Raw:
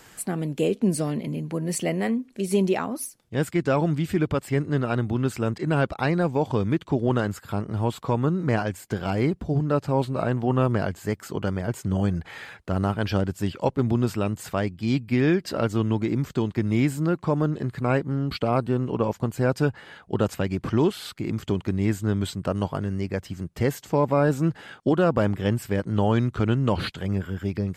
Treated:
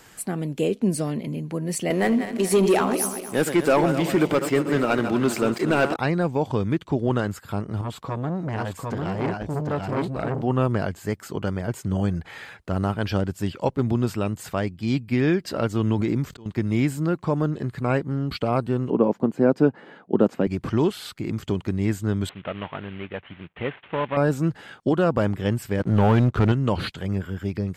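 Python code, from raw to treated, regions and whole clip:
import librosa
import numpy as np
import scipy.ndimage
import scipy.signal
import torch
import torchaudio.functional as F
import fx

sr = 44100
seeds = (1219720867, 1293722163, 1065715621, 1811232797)

y = fx.chain(x, sr, fx.reverse_delay_fb(ms=119, feedback_pct=65, wet_db=-11),
    fx.highpass(hz=250.0, slope=12),
    fx.leveller(passes=2), at=(1.9, 5.96))
y = fx.chain(y, sr, fx.high_shelf(hz=7600.0, db=-4.0),
    fx.echo_single(ms=748, db=-3.5),
    fx.transformer_sat(knee_hz=1000.0), at=(7.81, 10.42))
y = fx.chain(y, sr, fx.auto_swell(attack_ms=688.0),
    fx.pre_swell(db_per_s=25.0), at=(15.8, 16.46))
y = fx.chain(y, sr, fx.highpass(hz=220.0, slope=24),
    fx.tilt_eq(slope=-4.5), at=(18.9, 20.47))
y = fx.chain(y, sr, fx.cvsd(bps=16000),
    fx.tilt_eq(slope=3.0), at=(22.29, 24.17))
y = fx.chain(y, sr, fx.lowpass(hz=2500.0, slope=6),
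    fx.leveller(passes=2), at=(25.8, 26.52))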